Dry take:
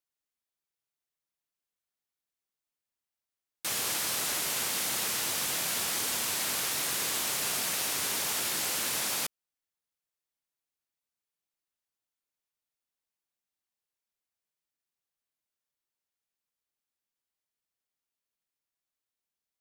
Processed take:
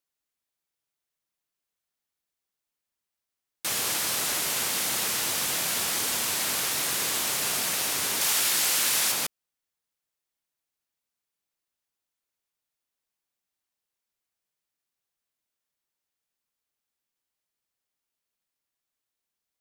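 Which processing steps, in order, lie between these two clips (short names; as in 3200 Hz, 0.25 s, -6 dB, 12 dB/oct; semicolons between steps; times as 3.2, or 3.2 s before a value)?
8.21–9.12 tilt shelf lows -4 dB, about 850 Hz; gain +3.5 dB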